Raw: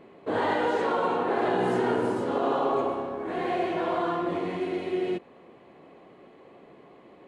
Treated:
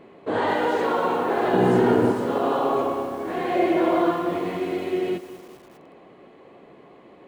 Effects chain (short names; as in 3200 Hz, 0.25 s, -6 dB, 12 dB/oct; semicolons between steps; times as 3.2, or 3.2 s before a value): 1.53–2.12 low shelf 340 Hz +9.5 dB; 3.55–4.12 small resonant body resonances 320/570/2100 Hz, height 10 dB; lo-fi delay 0.206 s, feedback 55%, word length 7-bit, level -14 dB; gain +3 dB